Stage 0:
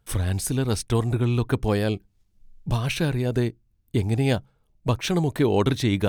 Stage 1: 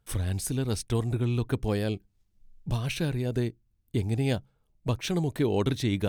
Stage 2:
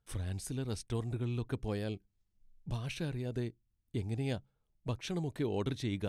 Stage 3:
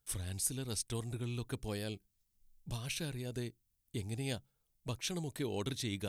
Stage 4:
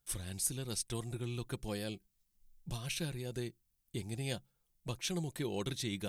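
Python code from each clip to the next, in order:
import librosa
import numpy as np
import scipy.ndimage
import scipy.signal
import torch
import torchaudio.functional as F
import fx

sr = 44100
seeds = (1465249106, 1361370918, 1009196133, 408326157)

y1 = fx.dynamic_eq(x, sr, hz=1100.0, q=0.88, threshold_db=-41.0, ratio=4.0, max_db=-4)
y1 = F.gain(torch.from_numpy(y1), -4.5).numpy()
y2 = scipy.signal.sosfilt(scipy.signal.bessel(8, 10000.0, 'lowpass', norm='mag', fs=sr, output='sos'), y1)
y2 = F.gain(torch.from_numpy(y2), -8.5).numpy()
y3 = scipy.signal.lfilter([1.0, -0.8], [1.0], y2)
y3 = F.gain(torch.from_numpy(y3), 10.0).numpy()
y4 = y3 + 0.38 * np.pad(y3, (int(5.7 * sr / 1000.0), 0))[:len(y3)]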